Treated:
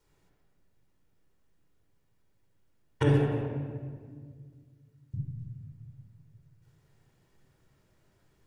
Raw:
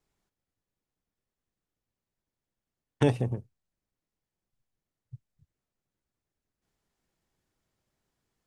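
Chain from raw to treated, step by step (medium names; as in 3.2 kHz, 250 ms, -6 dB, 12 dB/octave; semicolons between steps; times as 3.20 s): 3.11–5.14 s: high-pass 740 Hz 12 dB/octave; compression 2.5:1, threshold -38 dBFS, peak gain reduction 13.5 dB; reverberation RT60 1.8 s, pre-delay 23 ms, DRR -2.5 dB; trim +4.5 dB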